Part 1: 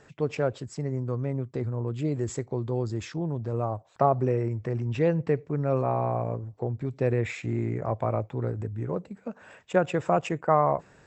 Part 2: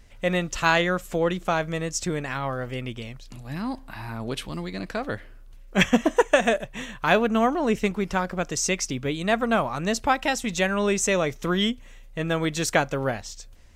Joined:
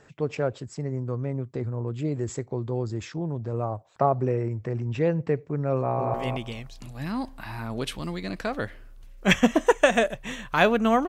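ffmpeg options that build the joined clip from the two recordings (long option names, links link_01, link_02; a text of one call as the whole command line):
ffmpeg -i cue0.wav -i cue1.wav -filter_complex "[0:a]apad=whole_dur=11.08,atrim=end=11.08,atrim=end=6.142[link_01];[1:a]atrim=start=2.638:end=7.58[link_02];[link_01][link_02]acrossfade=duration=0.004:curve1=hsin:curve2=hsin,asplit=2[link_03][link_04];[link_04]afade=type=in:start_time=5.75:duration=0.01,afade=type=out:start_time=6.14:duration=0.01,aecho=0:1:230|460|690:0.595662|0.0893493|0.0134024[link_05];[link_03][link_05]amix=inputs=2:normalize=0" out.wav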